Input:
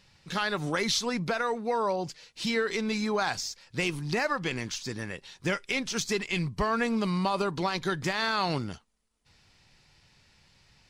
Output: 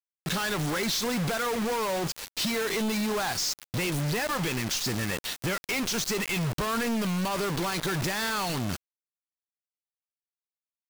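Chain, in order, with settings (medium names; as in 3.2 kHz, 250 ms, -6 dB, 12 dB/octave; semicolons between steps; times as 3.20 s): in parallel at +2 dB: peak limiter -25 dBFS, peak gain reduction 9.5 dB; on the sum: compression 5:1, threshold -30 dBFS, peak gain reduction 10 dB; companded quantiser 2-bit; trim -1.5 dB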